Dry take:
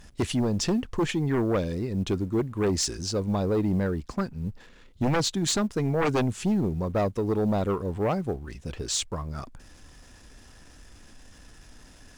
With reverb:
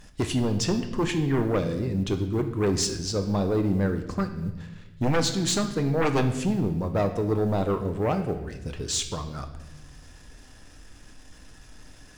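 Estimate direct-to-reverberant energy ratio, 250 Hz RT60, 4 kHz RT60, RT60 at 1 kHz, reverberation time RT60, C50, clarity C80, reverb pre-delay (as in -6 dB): 5.5 dB, 1.5 s, 0.95 s, 0.85 s, 0.95 s, 9.5 dB, 12.0 dB, 7 ms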